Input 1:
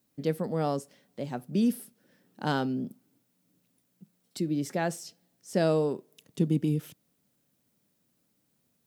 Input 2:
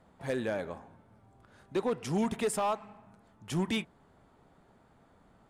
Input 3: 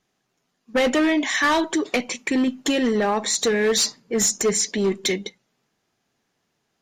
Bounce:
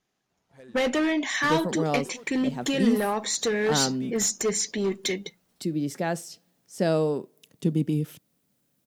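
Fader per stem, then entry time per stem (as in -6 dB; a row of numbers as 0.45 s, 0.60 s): +1.5 dB, -16.5 dB, -5.0 dB; 1.25 s, 0.30 s, 0.00 s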